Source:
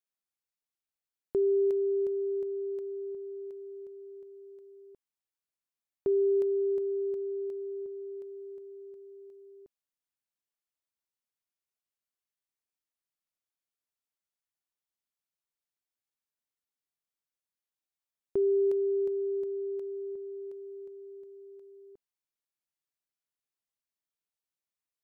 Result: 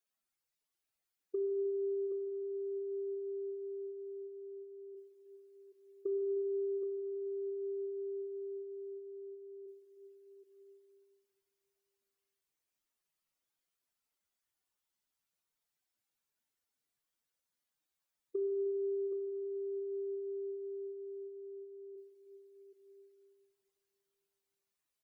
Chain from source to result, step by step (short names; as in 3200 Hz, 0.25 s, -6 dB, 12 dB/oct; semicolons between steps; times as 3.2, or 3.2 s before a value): spectral contrast raised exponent 2.5; compressor 5:1, threshold -39 dBFS, peak gain reduction 12.5 dB; on a send: tapped delay 0.123/0.309/0.76/0.773 s -17/-20/-16.5/-7.5 dB; on the sum: plate-style reverb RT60 2.9 s, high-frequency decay 0.8×, DRR 6.5 dB; gain +3 dB